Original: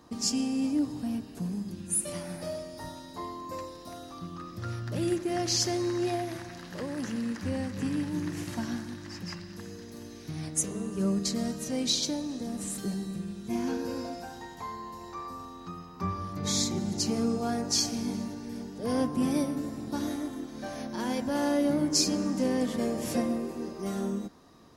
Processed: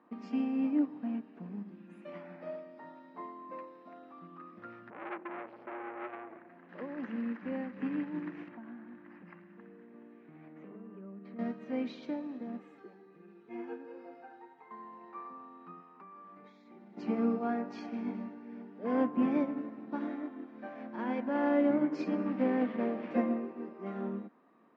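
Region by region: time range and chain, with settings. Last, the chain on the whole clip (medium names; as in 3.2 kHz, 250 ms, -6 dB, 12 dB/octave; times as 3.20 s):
4.90–6.69 s: distance through air 490 m + delay 992 ms -21.5 dB + transformer saturation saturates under 1.9 kHz
8.48–11.39 s: distance through air 340 m + compression, threshold -35 dBFS
12.59–14.71 s: tremolo 1.2 Hz, depth 34% + flange 1.4 Hz, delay 5 ms, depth 4.3 ms, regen +43% + comb 2.4 ms, depth 74%
15.80–16.97 s: high-pass 310 Hz 6 dB/octave + compression 8:1, threshold -41 dBFS
22.26–23.11 s: CVSD coder 32 kbps + loudspeaker Doppler distortion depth 0.11 ms
whole clip: Chebyshev band-pass 210–2400 Hz, order 3; peaking EQ 1.3 kHz +2.5 dB; upward expansion 1.5:1, over -40 dBFS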